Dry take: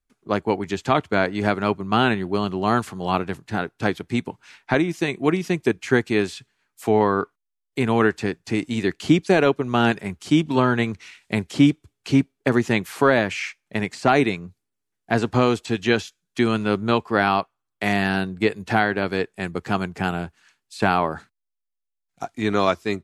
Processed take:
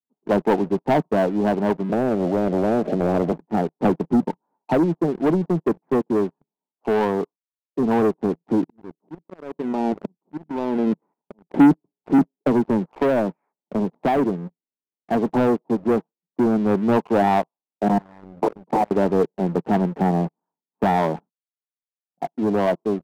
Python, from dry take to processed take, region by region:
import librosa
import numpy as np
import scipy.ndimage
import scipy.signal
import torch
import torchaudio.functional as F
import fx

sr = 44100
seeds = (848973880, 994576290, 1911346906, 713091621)

y = fx.chain(x, sr, fx.steep_lowpass(hz=620.0, slope=72),
    fx.spectral_comp(ratio=4.0), at=(1.89, 3.32))
y = fx.chain(y, sr, fx.highpass(hz=67.0, slope=12),
    fx.low_shelf(hz=350.0, db=4.5),
    fx.band_squash(depth_pct=40), at=(3.84, 4.28))
y = fx.chain(y, sr, fx.level_steps(step_db=15),
    fx.notch(hz=730.0, q=21.0),
    fx.auto_swell(attack_ms=575.0), at=(8.64, 11.5))
y = fx.chain(y, sr, fx.air_absorb(metres=220.0),
    fx.band_squash(depth_pct=40), at=(12.18, 14.17))
y = fx.chain(y, sr, fx.overflow_wrap(gain_db=13.5),
    fx.level_steps(step_db=22), at=(17.88, 18.91))
y = scipy.signal.sosfilt(scipy.signal.cheby1(4, 1.0, [160.0, 940.0], 'bandpass', fs=sr, output='sos'), y)
y = fx.leveller(y, sr, passes=3)
y = fx.rider(y, sr, range_db=10, speed_s=2.0)
y = F.gain(torch.from_numpy(y), -4.0).numpy()